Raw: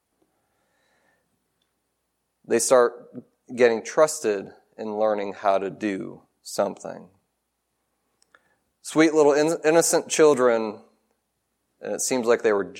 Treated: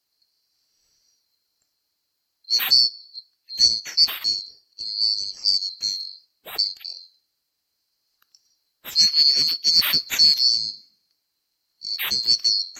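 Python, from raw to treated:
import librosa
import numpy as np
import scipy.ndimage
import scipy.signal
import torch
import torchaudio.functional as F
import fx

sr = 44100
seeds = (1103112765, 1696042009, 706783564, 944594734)

y = fx.band_swap(x, sr, width_hz=4000)
y = fx.highpass(y, sr, hz=130.0, slope=12, at=(8.98, 9.78))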